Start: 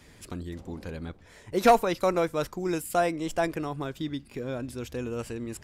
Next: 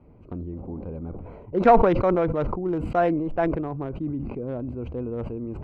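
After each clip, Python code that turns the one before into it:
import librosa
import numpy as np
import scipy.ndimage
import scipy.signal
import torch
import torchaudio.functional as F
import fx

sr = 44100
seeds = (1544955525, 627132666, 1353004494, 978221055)

y = fx.wiener(x, sr, points=25)
y = scipy.signal.sosfilt(scipy.signal.butter(2, 1800.0, 'lowpass', fs=sr, output='sos'), y)
y = fx.sustainer(y, sr, db_per_s=36.0)
y = F.gain(torch.from_numpy(y), 3.0).numpy()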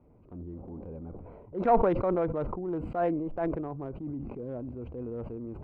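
y = fx.high_shelf(x, sr, hz=3200.0, db=-10.0)
y = fx.transient(y, sr, attack_db=-7, sustain_db=-1)
y = fx.peak_eq(y, sr, hz=640.0, db=3.0, octaves=2.6)
y = F.gain(torch.from_numpy(y), -7.5).numpy()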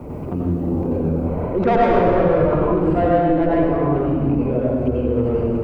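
y = 10.0 ** (-22.0 / 20.0) * np.tanh(x / 10.0 ** (-22.0 / 20.0))
y = fx.rev_plate(y, sr, seeds[0], rt60_s=1.6, hf_ratio=0.85, predelay_ms=75, drr_db=-7.0)
y = fx.band_squash(y, sr, depth_pct=70)
y = F.gain(torch.from_numpy(y), 7.5).numpy()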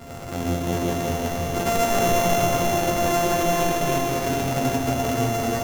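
y = np.r_[np.sort(x[:len(x) // 64 * 64].reshape(-1, 64), axis=1).ravel(), x[len(x) // 64 * 64:]]
y = fx.resonator_bank(y, sr, root=41, chord='sus4', decay_s=0.25)
y = y + 10.0 ** (-3.0 / 20.0) * np.pad(y, (int(348 * sr / 1000.0), 0))[:len(y)]
y = F.gain(torch.from_numpy(y), 5.0).numpy()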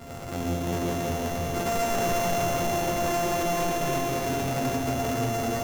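y = 10.0 ** (-18.5 / 20.0) * np.tanh(x / 10.0 ** (-18.5 / 20.0))
y = F.gain(torch.from_numpy(y), -2.0).numpy()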